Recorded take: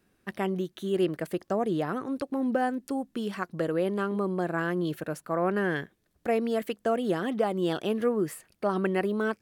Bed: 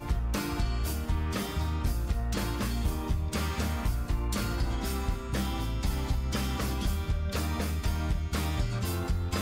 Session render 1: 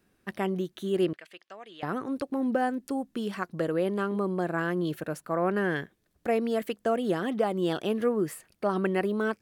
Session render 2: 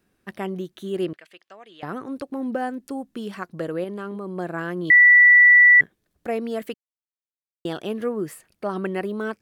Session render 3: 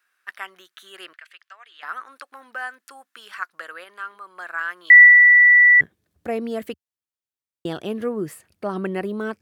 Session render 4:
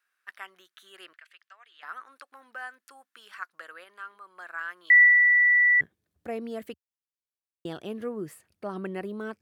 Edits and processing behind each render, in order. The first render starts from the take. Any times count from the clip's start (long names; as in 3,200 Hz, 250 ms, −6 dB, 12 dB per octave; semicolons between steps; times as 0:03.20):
0:01.13–0:01.83: resonant band-pass 2,800 Hz, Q 1.7
0:03.84–0:04.37: output level in coarse steps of 16 dB; 0:04.90–0:05.81: beep over 1,960 Hz −8.5 dBFS; 0:06.74–0:07.65: silence
high-pass filter sweep 1,400 Hz → 78 Hz, 0:05.03–0:05.72
level −8 dB